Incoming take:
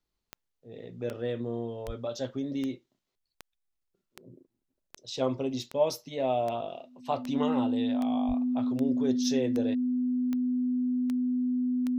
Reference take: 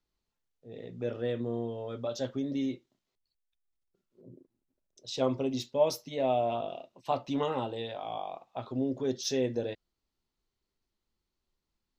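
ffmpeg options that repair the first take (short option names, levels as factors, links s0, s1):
-filter_complex "[0:a]adeclick=t=4,bandreject=f=250:w=30,asplit=3[s0][s1][s2];[s0]afade=t=out:st=1.86:d=0.02[s3];[s1]highpass=f=140:w=0.5412,highpass=f=140:w=1.3066,afade=t=in:st=1.86:d=0.02,afade=t=out:st=1.98:d=0.02[s4];[s2]afade=t=in:st=1.98:d=0.02[s5];[s3][s4][s5]amix=inputs=3:normalize=0,asplit=3[s6][s7][s8];[s6]afade=t=out:st=8.27:d=0.02[s9];[s7]highpass=f=140:w=0.5412,highpass=f=140:w=1.3066,afade=t=in:st=8.27:d=0.02,afade=t=out:st=8.39:d=0.02[s10];[s8]afade=t=in:st=8.39:d=0.02[s11];[s9][s10][s11]amix=inputs=3:normalize=0"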